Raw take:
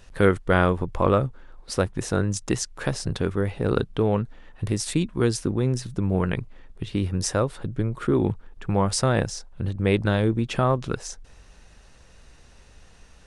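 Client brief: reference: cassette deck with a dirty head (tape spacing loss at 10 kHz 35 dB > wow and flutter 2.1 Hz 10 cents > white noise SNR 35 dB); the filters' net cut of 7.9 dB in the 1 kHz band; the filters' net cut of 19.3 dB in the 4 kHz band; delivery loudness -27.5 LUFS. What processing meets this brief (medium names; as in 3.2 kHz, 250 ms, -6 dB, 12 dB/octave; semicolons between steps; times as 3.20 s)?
tape spacing loss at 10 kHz 35 dB; peaking EQ 1 kHz -5.5 dB; peaking EQ 4 kHz -6.5 dB; wow and flutter 2.1 Hz 10 cents; white noise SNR 35 dB; trim -0.5 dB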